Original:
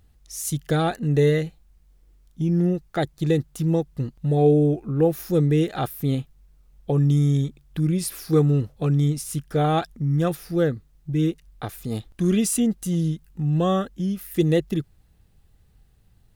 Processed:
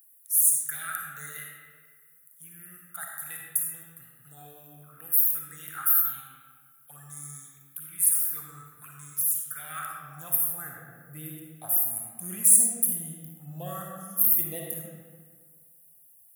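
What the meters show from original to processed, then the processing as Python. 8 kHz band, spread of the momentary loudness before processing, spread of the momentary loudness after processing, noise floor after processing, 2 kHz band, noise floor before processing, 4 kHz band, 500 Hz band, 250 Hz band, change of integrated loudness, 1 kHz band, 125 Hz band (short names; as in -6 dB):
+10.0 dB, 10 LU, 21 LU, -57 dBFS, -4.0 dB, -58 dBFS, under -10 dB, -25.0 dB, -24.0 dB, -0.5 dB, -11.5 dB, -25.0 dB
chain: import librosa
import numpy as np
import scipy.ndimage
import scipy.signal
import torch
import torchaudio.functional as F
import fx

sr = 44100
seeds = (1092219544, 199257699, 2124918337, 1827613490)

y = fx.curve_eq(x, sr, hz=(140.0, 420.0, 1700.0, 3400.0, 4900.0, 11000.0), db=(0, -28, -15, -21, -25, 15))
y = fx.env_phaser(y, sr, low_hz=200.0, high_hz=2900.0, full_db=-19.0)
y = fx.rev_freeverb(y, sr, rt60_s=1.7, hf_ratio=0.65, predelay_ms=15, drr_db=-1.0)
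y = fx.filter_sweep_highpass(y, sr, from_hz=1400.0, to_hz=640.0, start_s=9.56, end_s=11.08, q=3.5)
y = y * 10.0 ** (6.0 / 20.0)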